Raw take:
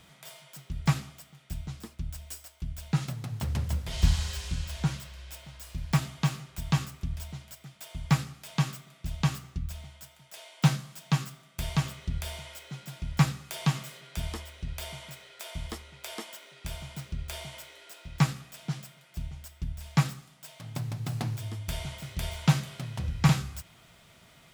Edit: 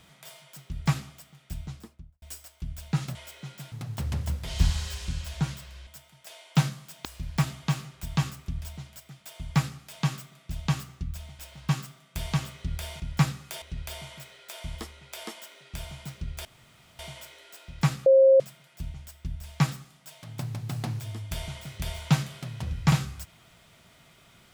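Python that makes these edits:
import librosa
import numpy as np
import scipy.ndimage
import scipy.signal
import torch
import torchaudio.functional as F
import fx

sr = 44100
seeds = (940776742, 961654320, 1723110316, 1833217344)

y = fx.studio_fade_out(x, sr, start_s=1.64, length_s=0.58)
y = fx.edit(y, sr, fx.swap(start_s=5.3, length_s=0.3, other_s=9.94, other_length_s=1.18),
    fx.move(start_s=12.43, length_s=0.57, to_s=3.15),
    fx.cut(start_s=13.62, length_s=0.91),
    fx.insert_room_tone(at_s=17.36, length_s=0.54),
    fx.bleep(start_s=18.43, length_s=0.34, hz=535.0, db=-13.0), tone=tone)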